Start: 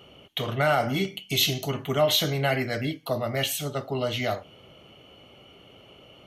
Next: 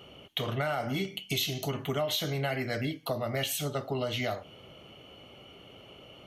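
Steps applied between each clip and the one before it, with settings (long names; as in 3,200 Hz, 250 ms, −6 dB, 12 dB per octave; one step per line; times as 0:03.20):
downward compressor 5 to 1, threshold −28 dBFS, peak gain reduction 10.5 dB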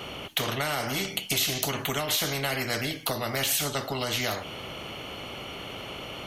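every bin compressed towards the loudest bin 2 to 1
level +9 dB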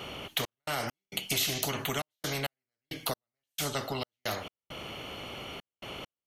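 gate pattern "xx.x.xxxx.x..x.." 67 BPM −60 dB
level −3 dB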